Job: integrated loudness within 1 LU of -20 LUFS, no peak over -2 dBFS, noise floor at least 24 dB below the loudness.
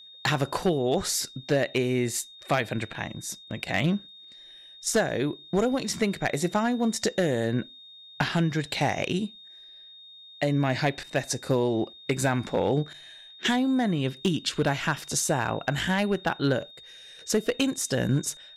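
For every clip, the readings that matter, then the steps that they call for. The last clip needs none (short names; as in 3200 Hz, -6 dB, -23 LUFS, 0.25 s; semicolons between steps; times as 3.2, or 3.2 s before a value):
clipped 0.4%; flat tops at -16.0 dBFS; steady tone 3700 Hz; tone level -46 dBFS; loudness -27.0 LUFS; peak -16.0 dBFS; loudness target -20.0 LUFS
-> clip repair -16 dBFS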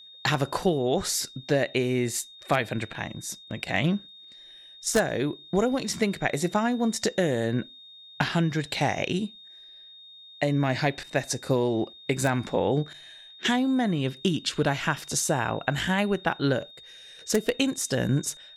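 clipped 0.0%; steady tone 3700 Hz; tone level -46 dBFS
-> notch 3700 Hz, Q 30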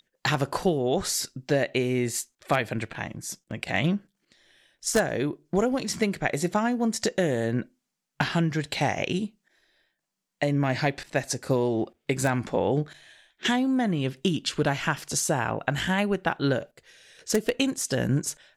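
steady tone none; loudness -27.0 LUFS; peak -7.0 dBFS; loudness target -20.0 LUFS
-> gain +7 dB; limiter -2 dBFS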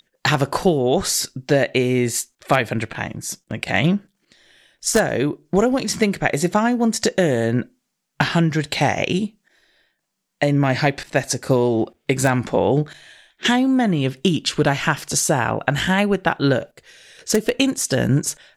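loudness -20.0 LUFS; peak -2.0 dBFS; noise floor -74 dBFS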